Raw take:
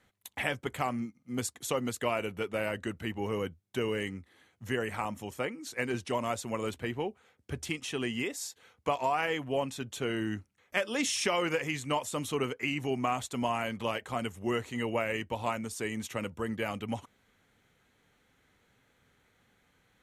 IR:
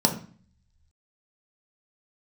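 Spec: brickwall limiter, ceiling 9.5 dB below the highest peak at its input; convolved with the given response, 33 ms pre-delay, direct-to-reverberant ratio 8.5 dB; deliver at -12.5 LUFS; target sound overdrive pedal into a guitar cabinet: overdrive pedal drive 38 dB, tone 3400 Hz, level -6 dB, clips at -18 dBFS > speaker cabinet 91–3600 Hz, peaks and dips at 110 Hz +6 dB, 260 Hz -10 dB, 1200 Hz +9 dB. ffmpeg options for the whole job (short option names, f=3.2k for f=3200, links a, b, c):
-filter_complex "[0:a]alimiter=limit=-22.5dB:level=0:latency=1,asplit=2[a][b];[1:a]atrim=start_sample=2205,adelay=33[c];[b][c]afir=irnorm=-1:irlink=0,volume=-22dB[d];[a][d]amix=inputs=2:normalize=0,asplit=2[e][f];[f]highpass=f=720:p=1,volume=38dB,asoftclip=type=tanh:threshold=-18dB[g];[e][g]amix=inputs=2:normalize=0,lowpass=f=3.4k:p=1,volume=-6dB,highpass=91,equalizer=f=110:t=q:w=4:g=6,equalizer=f=260:t=q:w=4:g=-10,equalizer=f=1.2k:t=q:w=4:g=9,lowpass=f=3.6k:w=0.5412,lowpass=f=3.6k:w=1.3066,volume=12dB"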